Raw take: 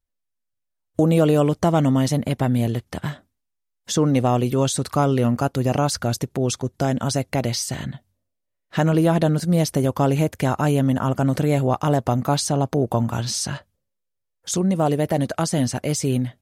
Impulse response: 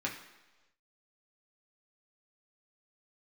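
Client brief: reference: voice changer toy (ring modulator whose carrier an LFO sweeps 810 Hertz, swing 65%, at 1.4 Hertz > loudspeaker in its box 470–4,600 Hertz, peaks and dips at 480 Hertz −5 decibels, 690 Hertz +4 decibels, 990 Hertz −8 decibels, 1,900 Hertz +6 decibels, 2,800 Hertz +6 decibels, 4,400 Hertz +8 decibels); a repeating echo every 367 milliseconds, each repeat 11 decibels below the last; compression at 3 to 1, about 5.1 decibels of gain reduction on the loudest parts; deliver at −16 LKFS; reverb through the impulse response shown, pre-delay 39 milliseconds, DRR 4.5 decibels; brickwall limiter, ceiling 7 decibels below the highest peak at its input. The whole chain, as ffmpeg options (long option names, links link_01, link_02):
-filter_complex "[0:a]acompressor=threshold=-20dB:ratio=3,alimiter=limit=-17dB:level=0:latency=1,aecho=1:1:367|734|1101:0.282|0.0789|0.0221,asplit=2[link_01][link_02];[1:a]atrim=start_sample=2205,adelay=39[link_03];[link_02][link_03]afir=irnorm=-1:irlink=0,volume=-9dB[link_04];[link_01][link_04]amix=inputs=2:normalize=0,aeval=exprs='val(0)*sin(2*PI*810*n/s+810*0.65/1.4*sin(2*PI*1.4*n/s))':channel_layout=same,highpass=470,equalizer=frequency=480:width_type=q:width=4:gain=-5,equalizer=frequency=690:width_type=q:width=4:gain=4,equalizer=frequency=990:width_type=q:width=4:gain=-8,equalizer=frequency=1900:width_type=q:width=4:gain=6,equalizer=frequency=2800:width_type=q:width=4:gain=6,equalizer=frequency=4400:width_type=q:width=4:gain=8,lowpass=frequency=4600:width=0.5412,lowpass=frequency=4600:width=1.3066,volume=13dB"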